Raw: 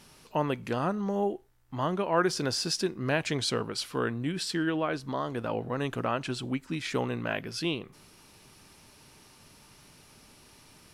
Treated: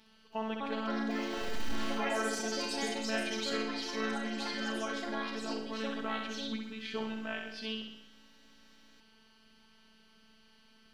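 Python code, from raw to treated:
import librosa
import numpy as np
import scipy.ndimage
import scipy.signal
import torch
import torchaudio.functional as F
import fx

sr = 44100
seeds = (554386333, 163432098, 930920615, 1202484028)

p1 = fx.clip_1bit(x, sr, at=(1.1, 1.98))
p2 = fx.high_shelf_res(p1, sr, hz=5600.0, db=-13.0, q=1.5)
p3 = fx.robotise(p2, sr, hz=220.0)
p4 = p3 + fx.room_flutter(p3, sr, wall_m=11.0, rt60_s=0.87, dry=0)
p5 = fx.echo_pitch(p4, sr, ms=326, semitones=4, count=3, db_per_echo=-3.0)
y = p5 * librosa.db_to_amplitude(-6.5)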